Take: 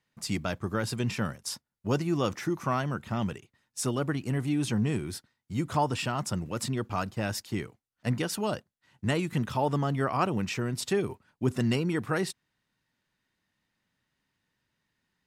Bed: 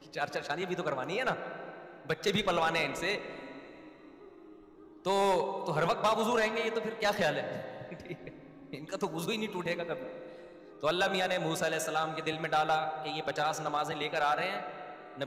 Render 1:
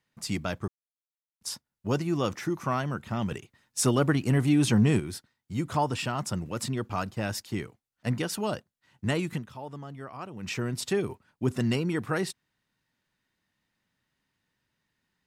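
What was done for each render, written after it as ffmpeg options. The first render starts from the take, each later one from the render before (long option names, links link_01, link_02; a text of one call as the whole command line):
ffmpeg -i in.wav -filter_complex "[0:a]asettb=1/sr,asplit=3[link_01][link_02][link_03];[link_01]atrim=end=3.314[link_04];[link_02]atrim=start=3.31:end=5,asetpts=PTS-STARTPTS,afade=type=in:duration=0.004:curve=qsin,afade=type=out:start_time=1.686:duration=0.004:curve=qsin,acontrast=47[link_05];[link_03]atrim=start=4.996[link_06];[link_04][link_05]acrossfade=duration=0.004:curve1=hsin:curve2=qsin[link_07];[link_07][link_06]acrossfade=duration=0.004:curve1=qsin:curve2=hsin,asplit=5[link_08][link_09][link_10][link_11][link_12];[link_08]atrim=end=0.68,asetpts=PTS-STARTPTS,afade=type=out:start_time=0.676:duration=0.004:curve=hsin[link_13];[link_09]atrim=start=0.68:end=1.41,asetpts=PTS-STARTPTS,volume=0[link_14];[link_10]atrim=start=1.41:end=9.69,asetpts=PTS-STARTPTS,afade=type=in:duration=0.004:curve=hsin,afade=type=out:start_time=7.94:duration=0.34:curve=exp:silence=0.223872[link_15];[link_11]atrim=start=9.69:end=10.13,asetpts=PTS-STARTPTS,volume=-13dB[link_16];[link_12]atrim=start=10.13,asetpts=PTS-STARTPTS,afade=type=in:duration=0.34:curve=exp:silence=0.223872[link_17];[link_13][link_14][link_15][link_16][link_17]concat=n=5:v=0:a=1" out.wav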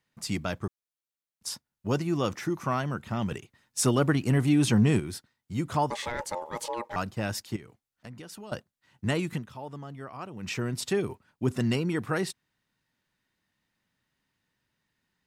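ffmpeg -i in.wav -filter_complex "[0:a]asettb=1/sr,asplit=3[link_01][link_02][link_03];[link_01]atrim=end=5.904[link_04];[link_02]atrim=start=5.9:end=6.96,asetpts=PTS-STARTPTS,afade=type=in:duration=0.004:curve=qsin,afade=type=out:start_time=1.056:duration=0.004:curve=qsin,aeval=exprs='val(0)*sin(2*PI*710*n/s)':channel_layout=same[link_05];[link_03]atrim=start=6.956[link_06];[link_04][link_05]acrossfade=duration=0.004:curve1=hsin:curve2=qsin[link_07];[link_07][link_06]acrossfade=duration=0.004:curve1=qsin:curve2=hsin,asettb=1/sr,asplit=3[link_08][link_09][link_10];[link_08]atrim=end=7.564[link_11];[link_09]atrim=start=7.56:end=8.52,asetpts=PTS-STARTPTS,afade=type=in:duration=0.004:curve=qsin,afade=type=out:start_time=0.956:duration=0.004:curve=qsin,acompressor=threshold=-43dB:ratio=4:attack=3.2:release=140:knee=1:detection=peak[link_12];[link_10]atrim=start=8.516[link_13];[link_11][link_12]acrossfade=duration=0.004:curve1=hsin:curve2=qsin[link_14];[link_14][link_13]acrossfade=duration=0.004:curve1=qsin:curve2=hsin" out.wav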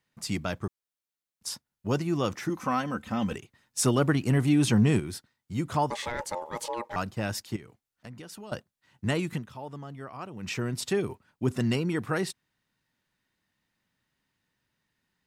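ffmpeg -i in.wav -filter_complex "[0:a]asettb=1/sr,asplit=3[link_01][link_02][link_03];[link_01]atrim=end=2.494[link_04];[link_02]atrim=start=2.49:end=3.36,asetpts=PTS-STARTPTS,afade=type=in:duration=0.004:curve=qsin,afade=type=out:start_time=0.866:duration=0.004:curve=qsin,aecho=1:1:3.9:0.65,atrim=end_sample=38367[link_05];[link_03]atrim=start=3.356[link_06];[link_04][link_05]acrossfade=duration=0.004:curve1=hsin:curve2=qsin[link_07];[link_07][link_06]acrossfade=duration=0.004:curve1=qsin:curve2=hsin" out.wav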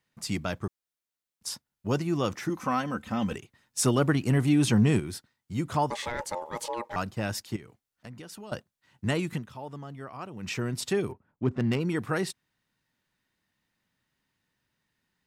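ffmpeg -i in.wav -filter_complex "[0:a]asplit=3[link_01][link_02][link_03];[link_01]afade=type=out:start_time=11.11:duration=0.02[link_04];[link_02]adynamicsmooth=sensitivity=3.5:basefreq=1200,afade=type=in:start_time=11.11:duration=0.02,afade=type=out:start_time=11.79:duration=0.02[link_05];[link_03]afade=type=in:start_time=11.79:duration=0.02[link_06];[link_04][link_05][link_06]amix=inputs=3:normalize=0" out.wav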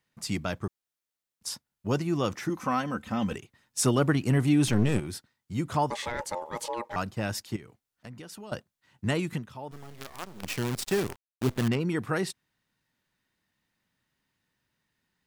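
ffmpeg -i in.wav -filter_complex "[0:a]asettb=1/sr,asplit=3[link_01][link_02][link_03];[link_01]atrim=end=4.674[link_04];[link_02]atrim=start=4.67:end=5.08,asetpts=PTS-STARTPTS,afade=type=in:duration=0.004:curve=qsin,afade=type=out:start_time=0.406:duration=0.004:curve=qsin,aeval=exprs='clip(val(0),-1,0.0224)':channel_layout=same[link_05];[link_03]atrim=start=5.076[link_06];[link_04][link_05]acrossfade=duration=0.004:curve1=hsin:curve2=qsin[link_07];[link_07][link_06]acrossfade=duration=0.004:curve1=qsin:curve2=hsin,asettb=1/sr,asplit=3[link_08][link_09][link_10];[link_08]atrim=end=9.714[link_11];[link_09]atrim=start=9.71:end=11.68,asetpts=PTS-STARTPTS,afade=type=in:duration=0.004:curve=qsin,afade=type=out:start_time=1.966:duration=0.004:curve=qsin,acrusher=bits=6:dc=4:mix=0:aa=0.000001[link_12];[link_10]atrim=start=11.676[link_13];[link_11][link_12]acrossfade=duration=0.004:curve1=hsin:curve2=qsin[link_14];[link_14][link_13]acrossfade=duration=0.004:curve1=qsin:curve2=hsin" out.wav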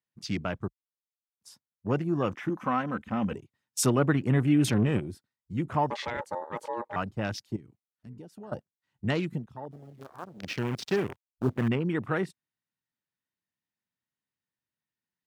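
ffmpeg -i in.wav -af "highpass=72,afwtdn=0.01" out.wav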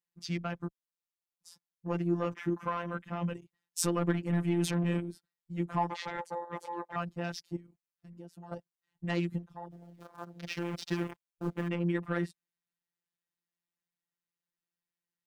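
ffmpeg -i in.wav -af "asoftclip=type=tanh:threshold=-16dB,afftfilt=real='hypot(re,im)*cos(PI*b)':imag='0':win_size=1024:overlap=0.75" out.wav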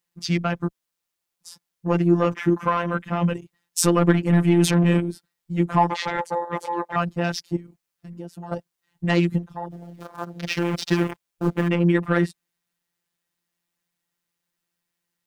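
ffmpeg -i in.wav -af "volume=12dB,alimiter=limit=-1dB:level=0:latency=1" out.wav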